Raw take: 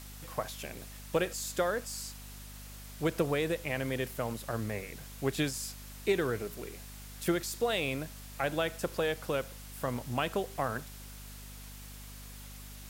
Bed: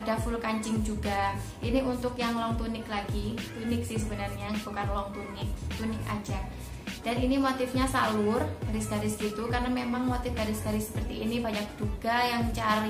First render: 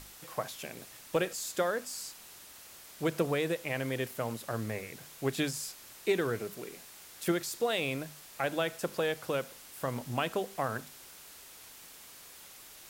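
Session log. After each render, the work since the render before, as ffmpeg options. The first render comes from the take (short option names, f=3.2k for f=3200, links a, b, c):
-af "bandreject=f=50:t=h:w=6,bandreject=f=100:t=h:w=6,bandreject=f=150:t=h:w=6,bandreject=f=200:t=h:w=6,bandreject=f=250:t=h:w=6"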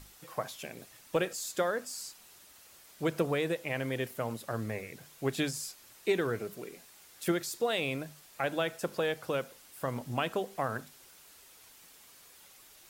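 -af "afftdn=nr=6:nf=-52"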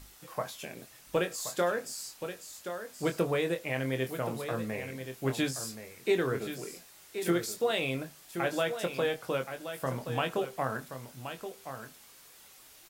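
-filter_complex "[0:a]asplit=2[a][b];[b]adelay=23,volume=-7dB[c];[a][c]amix=inputs=2:normalize=0,aecho=1:1:1075:0.335"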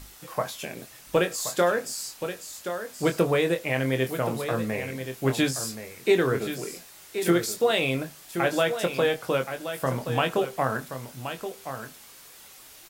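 -af "volume=6.5dB"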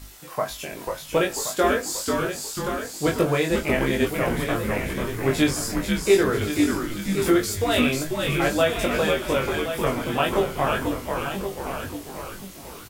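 -filter_complex "[0:a]asplit=2[a][b];[b]adelay=20,volume=-2.5dB[c];[a][c]amix=inputs=2:normalize=0,asplit=8[d][e][f][g][h][i][j][k];[e]adelay=491,afreqshift=-100,volume=-4dB[l];[f]adelay=982,afreqshift=-200,volume=-9.8dB[m];[g]adelay=1473,afreqshift=-300,volume=-15.7dB[n];[h]adelay=1964,afreqshift=-400,volume=-21.5dB[o];[i]adelay=2455,afreqshift=-500,volume=-27.4dB[p];[j]adelay=2946,afreqshift=-600,volume=-33.2dB[q];[k]adelay=3437,afreqshift=-700,volume=-39.1dB[r];[d][l][m][n][o][p][q][r]amix=inputs=8:normalize=0"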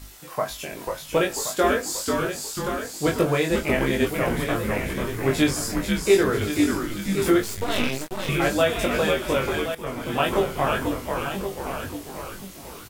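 -filter_complex "[0:a]asettb=1/sr,asplit=3[a][b][c];[a]atrim=end=7.434[d];[b]atrim=start=7.43:end=8.29,asetpts=PTS-STARTPTS,afade=t=in:d=0.004:c=qsin,afade=t=out:st=0.856:d=0.004:c=qsin,aeval=exprs='max(val(0),0)':c=same[e];[c]atrim=start=8.286[f];[d][e]acrossfade=d=0.004:c1=hsin:c2=qsin[g];[g][f]acrossfade=d=0.004:c1=qsin:c2=hsin,asplit=2[h][i];[h]atrim=end=9.75,asetpts=PTS-STARTPTS,afade=t=out:st=9.746:d=0.004:c=hsin:silence=0.188365[j];[i]atrim=start=9.75,asetpts=PTS-STARTPTS,afade=t=in:d=0.45:silence=0.188365[k];[j][k]concat=n=2:v=0:a=1"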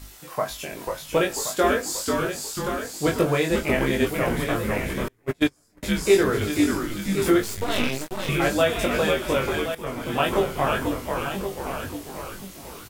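-filter_complex "[0:a]asettb=1/sr,asplit=3[a][b][c];[a]atrim=end=5.084[d];[b]atrim=start=5.08:end=5.83,asetpts=PTS-STARTPTS,afade=t=in:d=0.004:c=qsin,afade=t=out:st=0.746:d=0.004:c=qsin,agate=range=-35dB:threshold=-19dB:ratio=16:release=100:detection=peak[e];[c]atrim=start=5.826[f];[d][e]acrossfade=d=0.004:c1=hsin:c2=qsin[g];[g][f]acrossfade=d=0.004:c1=qsin:c2=hsin"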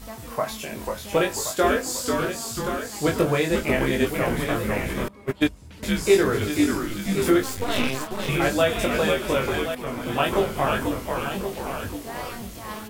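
-filter_complex "[1:a]volume=-10dB[a];[0:a][a]amix=inputs=2:normalize=0"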